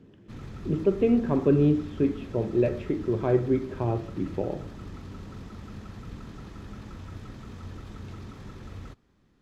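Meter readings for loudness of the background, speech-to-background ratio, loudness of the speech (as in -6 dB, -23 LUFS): -42.5 LUFS, 16.5 dB, -26.0 LUFS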